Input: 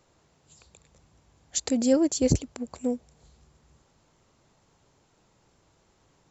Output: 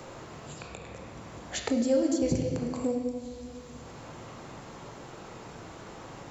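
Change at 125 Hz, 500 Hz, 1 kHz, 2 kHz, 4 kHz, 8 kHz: -3.0 dB, -0.5 dB, +5.0 dB, +5.0 dB, -2.5 dB, no reading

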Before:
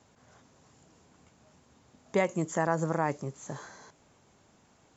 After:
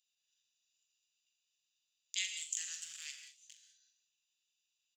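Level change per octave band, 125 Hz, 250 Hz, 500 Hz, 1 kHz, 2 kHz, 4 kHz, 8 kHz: under -40 dB, under -40 dB, under -40 dB, under -40 dB, -10.0 dB, +10.0 dB, no reading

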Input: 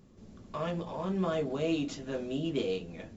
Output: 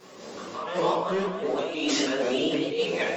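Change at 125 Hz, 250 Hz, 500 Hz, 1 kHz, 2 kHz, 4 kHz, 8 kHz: -3.0 dB, +4.0 dB, +7.5 dB, +10.5 dB, +13.0 dB, +13.0 dB, no reading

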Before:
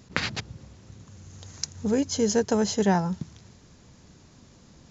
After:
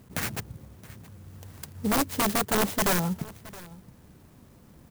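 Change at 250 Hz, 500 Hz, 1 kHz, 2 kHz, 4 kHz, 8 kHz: -4.0 dB, -5.0 dB, +2.0 dB, +2.0 dB, -0.5 dB, no reading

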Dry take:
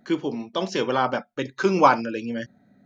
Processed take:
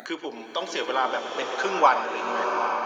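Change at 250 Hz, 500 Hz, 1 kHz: -10.0 dB, -3.0 dB, +0.5 dB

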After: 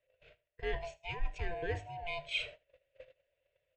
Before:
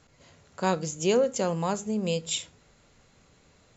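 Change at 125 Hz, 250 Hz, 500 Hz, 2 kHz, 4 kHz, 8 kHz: -11.0 dB, -24.0 dB, -15.0 dB, -1.0 dB, -7.5 dB, no reading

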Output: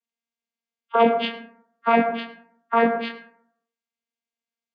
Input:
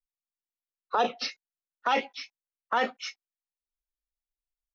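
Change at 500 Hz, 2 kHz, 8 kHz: +11.5 dB, +5.0 dB, no reading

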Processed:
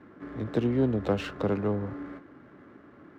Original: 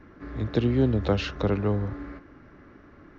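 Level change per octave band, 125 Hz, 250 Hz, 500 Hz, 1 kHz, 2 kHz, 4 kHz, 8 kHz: -6.0 dB, -2.0 dB, -1.5 dB, -1.5 dB, -3.5 dB, -7.0 dB, no reading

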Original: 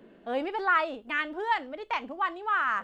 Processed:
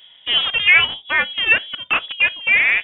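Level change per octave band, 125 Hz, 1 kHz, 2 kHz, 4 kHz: no reading, -2.5 dB, +15.5 dB, +24.5 dB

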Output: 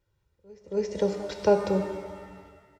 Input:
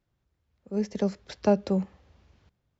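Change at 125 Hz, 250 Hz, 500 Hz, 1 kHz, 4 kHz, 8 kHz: -3.0 dB, -3.5 dB, +4.0 dB, +3.5 dB, +2.5 dB, no reading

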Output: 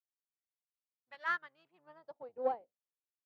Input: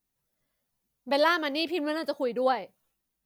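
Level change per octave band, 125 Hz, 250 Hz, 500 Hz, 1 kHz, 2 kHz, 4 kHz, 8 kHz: no reading, -25.5 dB, -13.5 dB, -11.0 dB, -9.0 dB, -25.0 dB, under -20 dB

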